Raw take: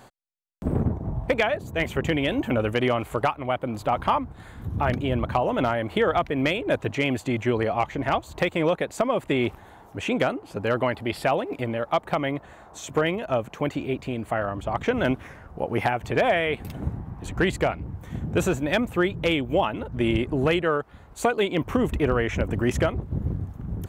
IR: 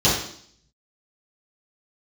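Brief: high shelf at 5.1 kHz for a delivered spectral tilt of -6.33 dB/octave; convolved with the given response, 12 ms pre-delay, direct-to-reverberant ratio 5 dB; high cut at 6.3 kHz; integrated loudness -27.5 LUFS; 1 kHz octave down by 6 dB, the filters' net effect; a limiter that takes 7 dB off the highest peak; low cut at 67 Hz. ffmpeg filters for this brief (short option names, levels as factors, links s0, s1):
-filter_complex "[0:a]highpass=67,lowpass=6300,equalizer=f=1000:t=o:g=-8.5,highshelf=f=5100:g=-6.5,alimiter=limit=0.126:level=0:latency=1,asplit=2[s0][s1];[1:a]atrim=start_sample=2205,adelay=12[s2];[s1][s2]afir=irnorm=-1:irlink=0,volume=0.0631[s3];[s0][s3]amix=inputs=2:normalize=0"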